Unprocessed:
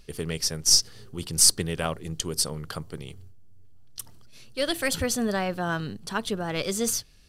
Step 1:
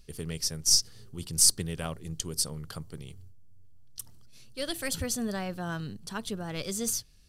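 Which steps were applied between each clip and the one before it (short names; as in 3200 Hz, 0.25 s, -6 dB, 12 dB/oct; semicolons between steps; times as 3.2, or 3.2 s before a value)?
tone controls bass +6 dB, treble +6 dB; gain -8.5 dB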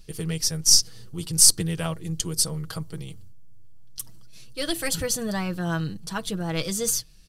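comb 6.2 ms; gain +4.5 dB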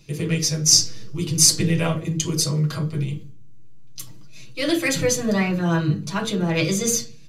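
reverb RT60 0.40 s, pre-delay 3 ms, DRR 0 dB; gain -3.5 dB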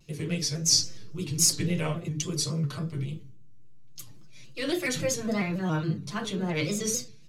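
shaped vibrato square 3.6 Hz, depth 100 cents; gain -7.5 dB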